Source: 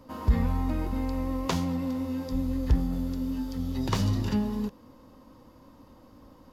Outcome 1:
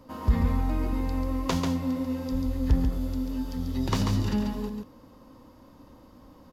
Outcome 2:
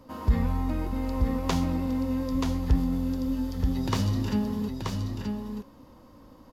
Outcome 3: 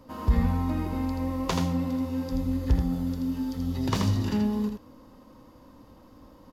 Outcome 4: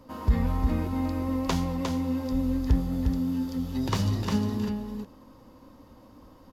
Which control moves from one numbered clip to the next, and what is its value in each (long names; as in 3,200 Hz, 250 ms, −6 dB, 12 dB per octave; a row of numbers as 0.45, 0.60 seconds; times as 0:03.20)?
single-tap delay, delay time: 140, 930, 81, 355 milliseconds